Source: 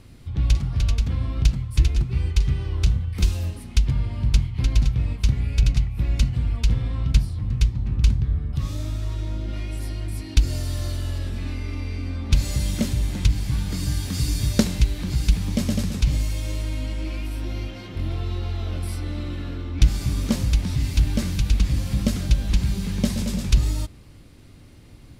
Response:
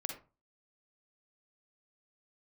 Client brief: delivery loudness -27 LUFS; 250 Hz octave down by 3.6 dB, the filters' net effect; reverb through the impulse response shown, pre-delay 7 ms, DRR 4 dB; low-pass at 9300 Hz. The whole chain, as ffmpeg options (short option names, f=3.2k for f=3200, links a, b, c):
-filter_complex "[0:a]lowpass=9.3k,equalizer=f=250:t=o:g=-5,asplit=2[a][b];[1:a]atrim=start_sample=2205,adelay=7[c];[b][c]afir=irnorm=-1:irlink=0,volume=-4dB[d];[a][d]amix=inputs=2:normalize=0,volume=-1dB"